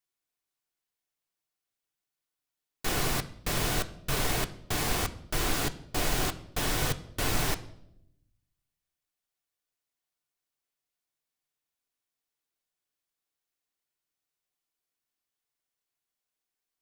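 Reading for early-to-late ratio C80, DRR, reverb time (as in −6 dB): 19.5 dB, 7.5 dB, 0.80 s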